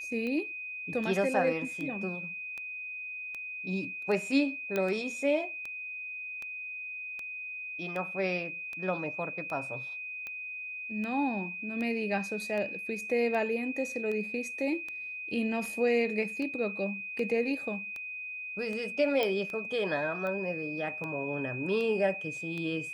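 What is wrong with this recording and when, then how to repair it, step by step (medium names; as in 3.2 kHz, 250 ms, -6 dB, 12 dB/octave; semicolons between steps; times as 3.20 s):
tick 78 rpm -26 dBFS
whine 2.5 kHz -37 dBFS
4.76 s: pop -17 dBFS
19.23 s: pop -16 dBFS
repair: de-click; band-stop 2.5 kHz, Q 30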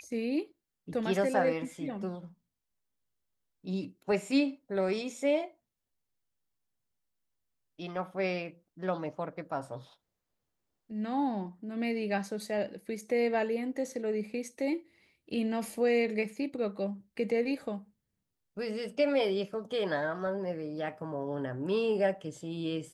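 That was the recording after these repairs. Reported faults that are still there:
4.76 s: pop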